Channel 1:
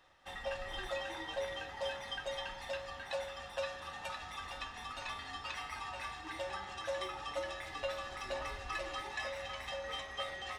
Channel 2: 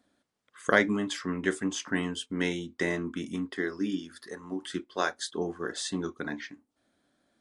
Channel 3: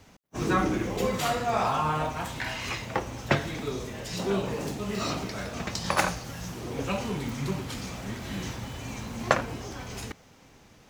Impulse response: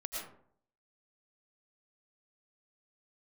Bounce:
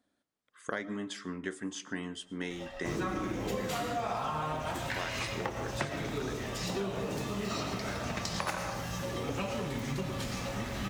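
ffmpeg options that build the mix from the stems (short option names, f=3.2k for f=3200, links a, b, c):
-filter_complex "[0:a]adelay=2150,volume=-4dB,asplit=2[a][b];[b]volume=-6dB[c];[1:a]volume=-7.5dB,asplit=3[d][e][f];[e]volume=-17.5dB[g];[2:a]adelay=2500,volume=-4dB,asplit=2[h][i];[i]volume=-3dB[j];[f]apad=whole_len=561739[k];[a][k]sidechaincompress=threshold=-44dB:ratio=8:attack=16:release=468[l];[3:a]atrim=start_sample=2205[m];[c][g][j]amix=inputs=3:normalize=0[n];[n][m]afir=irnorm=-1:irlink=0[o];[l][d][h][o]amix=inputs=4:normalize=0,acompressor=threshold=-31dB:ratio=6"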